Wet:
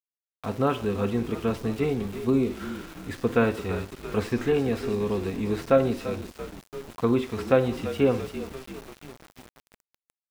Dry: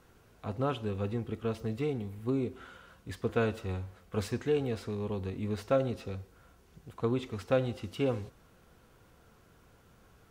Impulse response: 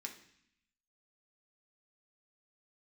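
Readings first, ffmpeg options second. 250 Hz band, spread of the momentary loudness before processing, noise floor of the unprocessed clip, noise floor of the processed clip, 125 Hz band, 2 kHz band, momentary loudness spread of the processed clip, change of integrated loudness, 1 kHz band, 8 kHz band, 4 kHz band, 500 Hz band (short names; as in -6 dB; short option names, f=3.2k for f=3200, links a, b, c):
+9.0 dB, 13 LU, -62 dBFS, under -85 dBFS, +4.0 dB, +8.5 dB, 16 LU, +7.5 dB, +8.0 dB, +7.5 dB, +6.0 dB, +7.5 dB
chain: -filter_complex "[0:a]asplit=8[a][b][c][d][e][f][g][h];[b]adelay=339,afreqshift=-41,volume=-13dB[i];[c]adelay=678,afreqshift=-82,volume=-17dB[j];[d]adelay=1017,afreqshift=-123,volume=-21dB[k];[e]adelay=1356,afreqshift=-164,volume=-25dB[l];[f]adelay=1695,afreqshift=-205,volume=-29.1dB[m];[g]adelay=2034,afreqshift=-246,volume=-33.1dB[n];[h]adelay=2373,afreqshift=-287,volume=-37.1dB[o];[a][i][j][k][l][m][n][o]amix=inputs=8:normalize=0,acrossover=split=2800[p][q];[q]acompressor=threshold=-55dB:ratio=4:attack=1:release=60[r];[p][r]amix=inputs=2:normalize=0,asplit=2[s][t];[1:a]atrim=start_sample=2205,atrim=end_sample=4410[u];[t][u]afir=irnorm=-1:irlink=0,volume=-2dB[v];[s][v]amix=inputs=2:normalize=0,aeval=exprs='val(0)*gte(abs(val(0)),0.00473)':c=same,volume=6dB"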